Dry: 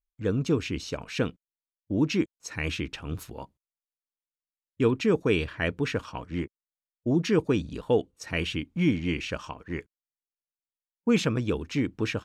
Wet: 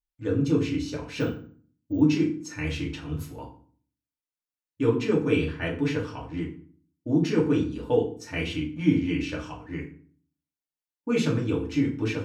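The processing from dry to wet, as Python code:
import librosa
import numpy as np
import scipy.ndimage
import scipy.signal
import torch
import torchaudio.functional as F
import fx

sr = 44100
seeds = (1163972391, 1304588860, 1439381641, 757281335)

y = fx.rev_fdn(x, sr, rt60_s=0.46, lf_ratio=1.45, hf_ratio=0.75, size_ms=20.0, drr_db=-3.5)
y = fx.resample_bad(y, sr, factor=2, down='filtered', up='hold', at=(1.2, 2.01))
y = y * librosa.db_to_amplitude(-6.5)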